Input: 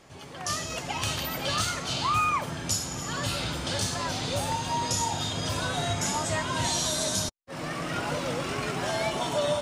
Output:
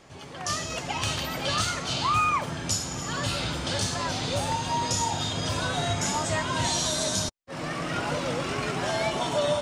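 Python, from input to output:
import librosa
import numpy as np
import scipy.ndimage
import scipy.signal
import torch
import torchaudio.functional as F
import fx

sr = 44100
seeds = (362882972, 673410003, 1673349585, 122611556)

y = fx.peak_eq(x, sr, hz=13000.0, db=-11.5, octaves=0.44)
y = F.gain(torch.from_numpy(y), 1.5).numpy()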